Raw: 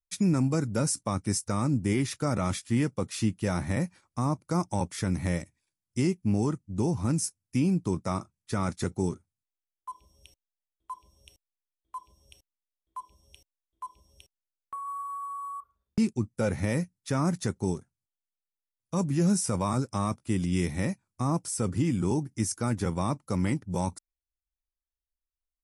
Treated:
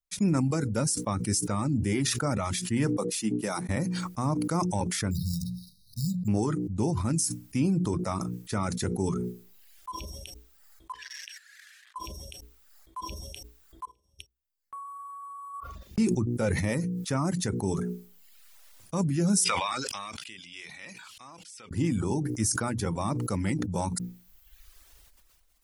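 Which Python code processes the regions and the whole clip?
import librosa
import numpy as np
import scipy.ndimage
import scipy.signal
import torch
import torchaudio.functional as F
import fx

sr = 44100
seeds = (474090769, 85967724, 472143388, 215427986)

y = fx.chain(x, sr, fx.highpass(hz=170.0, slope=24),
    fx.high_shelf(hz=8300.0, db=11.5),
    fx.upward_expand(threshold_db=-49.0, expansion=2.5), at=(2.93, 3.69))
y = fx.chain(y, sr, fx.high_shelf(hz=5600.0, db=8.0),
    fx.resample_bad(factor=6, down='none', up='hold'),
    fx.brickwall_bandstop(low_hz=220.0, high_hz=3700.0), at=(5.11, 6.28))
y = fx.chain(y, sr, fx.crossing_spikes(level_db=-43.0),
    fx.ladder_bandpass(hz=1800.0, resonance_pct=80),
    fx.level_steps(step_db=10), at=(10.92, 11.96))
y = fx.chain(y, sr, fx.level_steps(step_db=19),
    fx.upward_expand(threshold_db=-53.0, expansion=2.5), at=(13.85, 15.54))
y = fx.chain(y, sr, fx.bandpass_q(hz=3000.0, q=2.0),
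    fx.pre_swell(db_per_s=66.0), at=(19.44, 21.71))
y = fx.hum_notches(y, sr, base_hz=60, count=8)
y = fx.dereverb_blind(y, sr, rt60_s=0.68)
y = fx.sustainer(y, sr, db_per_s=23.0)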